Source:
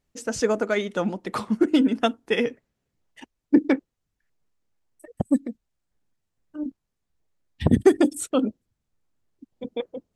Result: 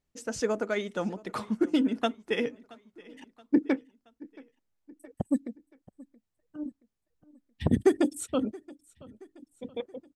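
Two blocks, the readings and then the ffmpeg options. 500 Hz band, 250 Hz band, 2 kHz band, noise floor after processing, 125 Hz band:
-6.0 dB, -6.0 dB, -6.0 dB, -82 dBFS, -6.0 dB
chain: -af "aecho=1:1:675|1350|2025:0.075|0.0382|0.0195,volume=-6dB"

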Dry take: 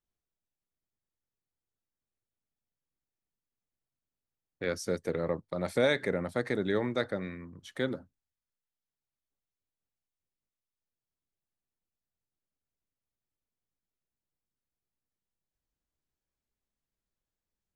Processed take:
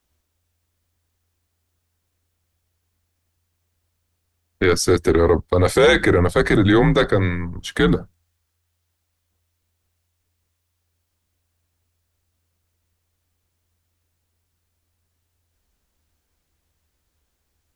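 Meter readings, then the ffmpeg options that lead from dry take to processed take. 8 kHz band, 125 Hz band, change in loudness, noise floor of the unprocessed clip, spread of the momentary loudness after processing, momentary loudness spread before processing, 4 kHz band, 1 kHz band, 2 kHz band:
+18.0 dB, +19.0 dB, +15.0 dB, under -85 dBFS, 8 LU, 12 LU, +15.0 dB, +16.5 dB, +14.5 dB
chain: -af "apsyclip=26dB,afreqshift=-85,volume=-7.5dB"

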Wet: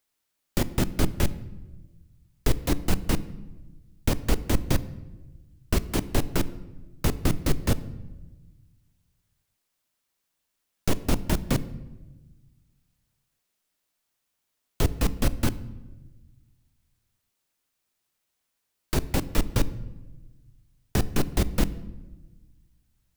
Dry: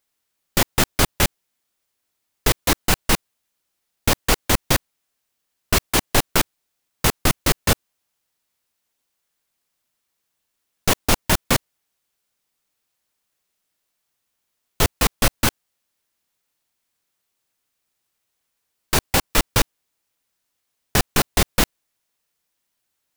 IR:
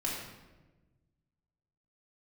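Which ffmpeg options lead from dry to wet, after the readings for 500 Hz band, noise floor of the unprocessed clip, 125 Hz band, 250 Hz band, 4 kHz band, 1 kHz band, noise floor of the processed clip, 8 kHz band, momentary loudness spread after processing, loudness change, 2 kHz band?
-6.5 dB, -77 dBFS, -1.5 dB, -2.0 dB, -13.0 dB, -12.0 dB, -79 dBFS, -13.0 dB, 17 LU, -8.0 dB, -13.0 dB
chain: -filter_complex "[0:a]acrossover=split=480[a][b];[b]acompressor=threshold=-37dB:ratio=2[c];[a][c]amix=inputs=2:normalize=0,asplit=2[d][e];[1:a]atrim=start_sample=2205,lowshelf=f=390:g=6.5[f];[e][f]afir=irnorm=-1:irlink=0,volume=-18.5dB[g];[d][g]amix=inputs=2:normalize=0,volume=-3.5dB"

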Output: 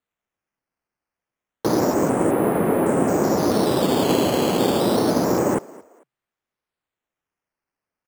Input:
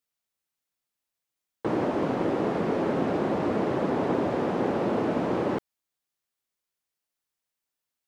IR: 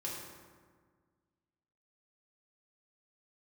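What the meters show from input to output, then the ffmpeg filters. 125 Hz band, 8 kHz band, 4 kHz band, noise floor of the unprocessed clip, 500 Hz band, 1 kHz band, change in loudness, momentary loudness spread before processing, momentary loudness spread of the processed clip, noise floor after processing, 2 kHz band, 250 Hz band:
+7.0 dB, n/a, +15.5 dB, under -85 dBFS, +7.0 dB, +6.5 dB, +7.0 dB, 2 LU, 2 LU, under -85 dBFS, +5.5 dB, +7.0 dB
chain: -filter_complex "[0:a]lowpass=2.4k,acrusher=samples=8:mix=1:aa=0.000001:lfo=1:lforange=8:lforate=0.29,asplit=3[a][b][c];[b]adelay=223,afreqshift=63,volume=-22dB[d];[c]adelay=446,afreqshift=126,volume=-32.5dB[e];[a][d][e]amix=inputs=3:normalize=0,volume=7dB"

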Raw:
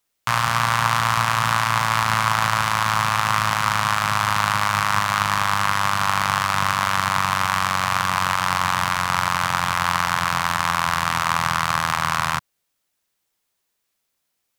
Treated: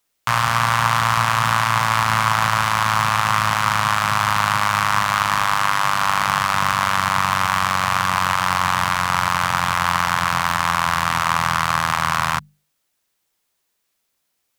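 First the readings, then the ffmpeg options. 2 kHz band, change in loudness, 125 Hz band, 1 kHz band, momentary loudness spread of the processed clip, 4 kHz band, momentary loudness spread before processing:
+1.5 dB, +2.0 dB, +1.5 dB, +2.0 dB, 2 LU, +1.0 dB, 2 LU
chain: -af "bandreject=f=50:t=h:w=6,bandreject=f=100:t=h:w=6,bandreject=f=150:t=h:w=6,bandreject=f=200:t=h:w=6,acontrast=21,volume=-2dB"

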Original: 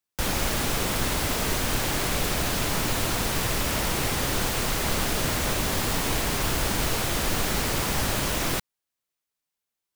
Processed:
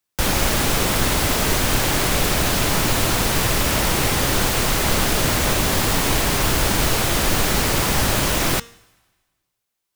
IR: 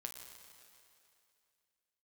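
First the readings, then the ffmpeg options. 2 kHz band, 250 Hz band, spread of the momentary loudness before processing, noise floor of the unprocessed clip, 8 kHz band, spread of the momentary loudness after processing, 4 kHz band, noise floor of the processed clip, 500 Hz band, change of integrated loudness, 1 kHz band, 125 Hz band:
+6.5 dB, +6.5 dB, 0 LU, under -85 dBFS, +7.0 dB, 0 LU, +6.5 dB, -79 dBFS, +6.5 dB, +7.0 dB, +6.5 dB, +7.0 dB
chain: -filter_complex "[0:a]bandreject=f=233.6:t=h:w=4,bandreject=f=467.2:t=h:w=4,bandreject=f=700.8:t=h:w=4,bandreject=f=934.4:t=h:w=4,bandreject=f=1.168k:t=h:w=4,bandreject=f=1.4016k:t=h:w=4,bandreject=f=1.6352k:t=h:w=4,bandreject=f=1.8688k:t=h:w=4,bandreject=f=2.1024k:t=h:w=4,bandreject=f=2.336k:t=h:w=4,bandreject=f=2.5696k:t=h:w=4,bandreject=f=2.8032k:t=h:w=4,bandreject=f=3.0368k:t=h:w=4,bandreject=f=3.2704k:t=h:w=4,bandreject=f=3.504k:t=h:w=4,bandreject=f=3.7376k:t=h:w=4,bandreject=f=3.9712k:t=h:w=4,bandreject=f=4.2048k:t=h:w=4,bandreject=f=4.4384k:t=h:w=4,bandreject=f=4.672k:t=h:w=4,bandreject=f=4.9056k:t=h:w=4,bandreject=f=5.1392k:t=h:w=4,bandreject=f=5.3728k:t=h:w=4,bandreject=f=5.6064k:t=h:w=4,bandreject=f=5.84k:t=h:w=4,bandreject=f=6.0736k:t=h:w=4,bandreject=f=6.3072k:t=h:w=4,bandreject=f=6.5408k:t=h:w=4,bandreject=f=6.7744k:t=h:w=4,bandreject=f=7.008k:t=h:w=4,bandreject=f=7.2416k:t=h:w=4,bandreject=f=7.4752k:t=h:w=4,bandreject=f=7.7088k:t=h:w=4,bandreject=f=7.9424k:t=h:w=4,bandreject=f=8.176k:t=h:w=4,bandreject=f=8.4096k:t=h:w=4,bandreject=f=8.6432k:t=h:w=4,asplit=2[a][b];[1:a]atrim=start_sample=2205,asetrate=79380,aresample=44100[c];[b][c]afir=irnorm=-1:irlink=0,volume=-10dB[d];[a][d]amix=inputs=2:normalize=0,volume=6dB"

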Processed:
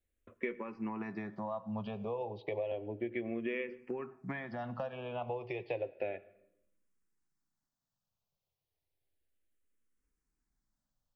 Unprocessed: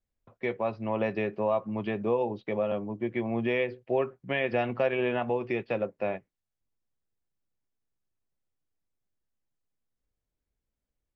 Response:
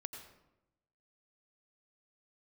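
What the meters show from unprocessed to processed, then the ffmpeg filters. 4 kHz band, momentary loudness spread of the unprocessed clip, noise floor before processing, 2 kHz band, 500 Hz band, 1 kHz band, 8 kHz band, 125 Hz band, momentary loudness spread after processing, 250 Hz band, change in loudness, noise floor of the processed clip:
-12.0 dB, 5 LU, under -85 dBFS, -9.5 dB, -10.0 dB, -9.5 dB, n/a, -8.0 dB, 4 LU, -8.0 dB, -9.5 dB, under -85 dBFS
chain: -filter_complex "[0:a]acompressor=threshold=-36dB:ratio=6,asplit=2[a][b];[1:a]atrim=start_sample=2205[c];[b][c]afir=irnorm=-1:irlink=0,volume=-8dB[d];[a][d]amix=inputs=2:normalize=0,asplit=2[e][f];[f]afreqshift=-0.32[g];[e][g]amix=inputs=2:normalize=1,volume=1.5dB"

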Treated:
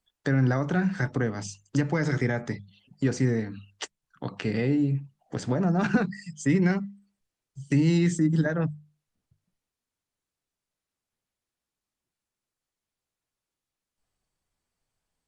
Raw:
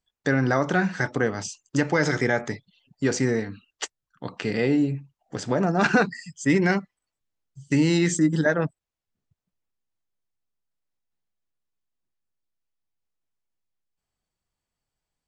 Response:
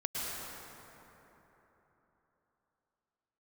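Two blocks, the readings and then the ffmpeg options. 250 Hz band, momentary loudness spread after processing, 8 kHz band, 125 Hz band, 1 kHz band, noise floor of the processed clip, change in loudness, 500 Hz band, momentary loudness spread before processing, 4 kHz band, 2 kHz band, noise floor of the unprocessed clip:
-1.5 dB, 15 LU, -7.0 dB, +2.0 dB, -7.5 dB, under -85 dBFS, -2.5 dB, -5.5 dB, 15 LU, -6.5 dB, -7.5 dB, under -85 dBFS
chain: -filter_complex "[0:a]bandreject=f=50:t=h:w=6,bandreject=f=100:t=h:w=6,bandreject=f=150:t=h:w=6,bandreject=f=200:t=h:w=6,acrossover=split=210[a][b];[b]acompressor=threshold=-40dB:ratio=2[c];[a][c]amix=inputs=2:normalize=0,volume=4dB" -ar 48000 -c:a libopus -b:a 32k

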